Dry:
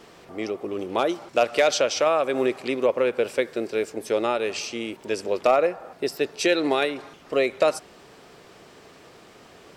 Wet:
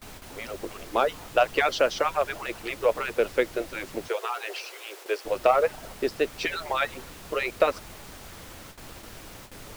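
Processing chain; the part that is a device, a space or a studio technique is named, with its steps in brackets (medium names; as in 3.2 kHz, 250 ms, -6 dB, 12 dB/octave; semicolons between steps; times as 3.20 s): harmonic-percussive separation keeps percussive; horn gramophone (band-pass 200–3500 Hz; peaking EQ 1.4 kHz +4 dB 0.4 oct; wow and flutter; pink noise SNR 15 dB); 4.08–5.25 s: steep high-pass 360 Hz 48 dB/octave; gate with hold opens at -33 dBFS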